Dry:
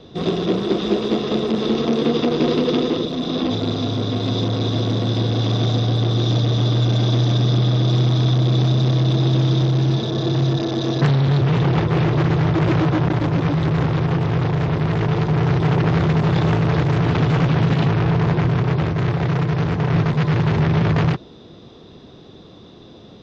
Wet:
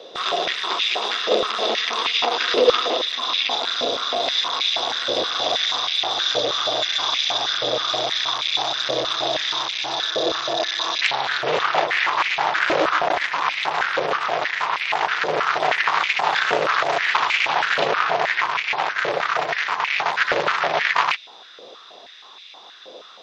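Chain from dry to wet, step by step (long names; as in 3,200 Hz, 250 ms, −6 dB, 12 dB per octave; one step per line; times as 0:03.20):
tilt shelving filter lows −5 dB, about 1,500 Hz
high-pass on a step sequencer 6.3 Hz 540–2,300 Hz
level +3 dB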